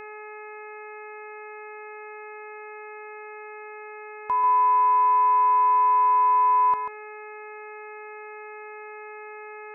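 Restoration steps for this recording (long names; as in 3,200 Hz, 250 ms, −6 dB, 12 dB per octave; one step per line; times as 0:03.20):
hum removal 424.6 Hz, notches 6
broadband denoise 29 dB, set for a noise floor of −40 dBFS
echo removal 139 ms −7.5 dB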